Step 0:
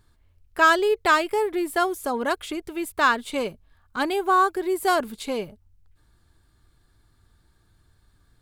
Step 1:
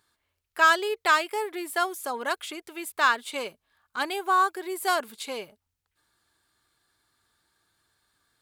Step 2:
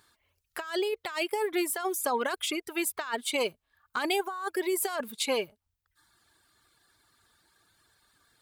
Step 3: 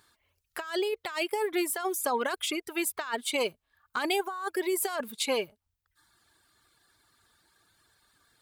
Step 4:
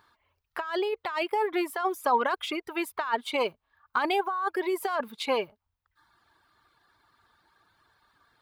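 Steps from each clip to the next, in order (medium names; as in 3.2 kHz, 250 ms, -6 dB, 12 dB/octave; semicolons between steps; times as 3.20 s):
high-pass 980 Hz 6 dB/octave
reverb removal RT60 0.81 s; compressor with a negative ratio -32 dBFS, ratio -1; trim +1.5 dB
no audible change
ten-band graphic EQ 1 kHz +8 dB, 8 kHz -11 dB, 16 kHz -9 dB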